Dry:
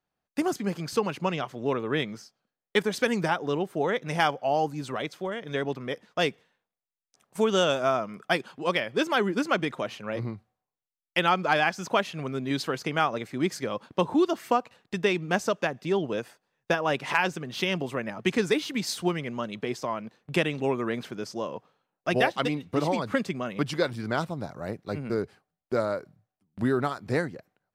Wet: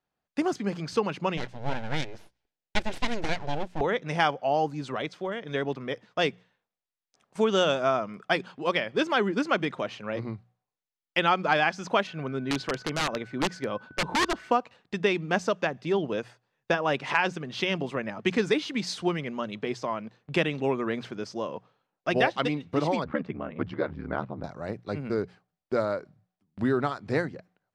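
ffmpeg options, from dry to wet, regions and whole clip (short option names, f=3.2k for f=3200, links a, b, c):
-filter_complex "[0:a]asettb=1/sr,asplit=3[a][b][c];[a]atrim=end=1.374[d];[b]atrim=start=1.37:end=3.81,asetpts=PTS-STARTPTS,afade=t=in:d=0.004:c=qsin,afade=t=out:st=2.436:d=0.004:c=qsin,aeval=exprs='abs(val(0))':c=same,equalizer=f=1.2k:w=4.9:g=-9.5[e];[c]atrim=start=3.806[f];[d][e]acrossfade=d=0.004:c1=hsin:c2=qsin[g];[g][f]acrossfade=d=0.004:c1=qsin:c2=hsin,asettb=1/sr,asplit=3[h][i][j];[h]atrim=end=12.074[k];[i]atrim=start=12.07:end=14.51,asetpts=PTS-STARTPTS,afade=t=in:d=0.004:c=qsin,afade=t=out:st=2.436:d=0.004:c=qsin,highshelf=f=4.2k:g=-8.5,aeval=exprs='val(0)+0.00316*sin(2*PI*1500*n/s)':c=same,aeval=exprs='(mod(8.91*val(0)+1,2)-1)/8.91':c=same[l];[j]atrim=start=14.506[m];[k][l]acrossfade=d=0.004:c1=hsin:c2=qsin[n];[n][m]acrossfade=d=0.004:c1=qsin:c2=hsin,asettb=1/sr,asplit=3[o][p][q];[o]atrim=end=23.044[r];[p]atrim=start=23.04:end=24.44,asetpts=PTS-STARTPTS,afade=t=in:d=0.004:c=qsin,afade=t=out:st=1.396:d=0.004:c=qsin,lowpass=1.8k,aeval=exprs='val(0)*sin(2*PI*37*n/s)':c=same[s];[q]atrim=start=24.436[t];[r][s]acrossfade=d=0.004:c1=hsin:c2=qsin[u];[u][t]acrossfade=d=0.004:c1=qsin:c2=hsin,lowpass=5.9k,bandreject=f=60:t=h:w=6,bandreject=f=120:t=h:w=6,bandreject=f=180:t=h:w=6"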